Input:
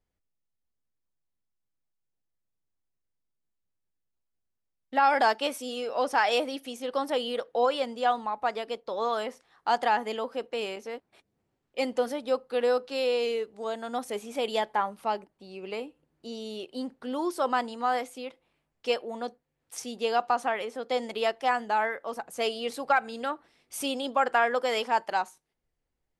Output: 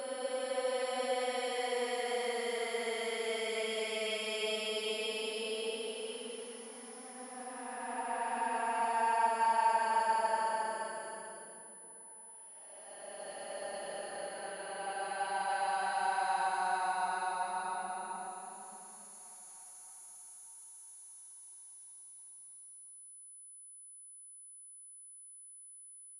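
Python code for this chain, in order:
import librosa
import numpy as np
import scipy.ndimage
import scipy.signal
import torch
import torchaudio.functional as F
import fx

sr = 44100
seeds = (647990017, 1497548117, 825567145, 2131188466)

y = fx.paulstretch(x, sr, seeds[0], factor=30.0, window_s=0.1, from_s=24.63)
y = y + 10.0 ** (-42.0 / 20.0) * np.sin(2.0 * np.pi * 10000.0 * np.arange(len(y)) / sr)
y = F.gain(torch.from_numpy(y), -8.5).numpy()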